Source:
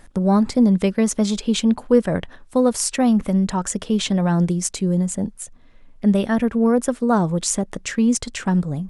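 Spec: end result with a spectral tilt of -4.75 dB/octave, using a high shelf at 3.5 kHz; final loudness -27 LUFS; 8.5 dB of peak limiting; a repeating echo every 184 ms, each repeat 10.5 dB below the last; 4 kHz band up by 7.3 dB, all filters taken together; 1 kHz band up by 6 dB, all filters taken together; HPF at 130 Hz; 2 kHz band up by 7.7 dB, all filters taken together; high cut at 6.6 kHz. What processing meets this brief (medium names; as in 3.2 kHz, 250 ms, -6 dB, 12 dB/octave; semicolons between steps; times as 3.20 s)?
high-pass 130 Hz; low-pass 6.6 kHz; peaking EQ 1 kHz +6 dB; peaking EQ 2 kHz +5.5 dB; treble shelf 3.5 kHz +3.5 dB; peaking EQ 4 kHz +5.5 dB; peak limiter -11 dBFS; feedback delay 184 ms, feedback 30%, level -10.5 dB; trim -6.5 dB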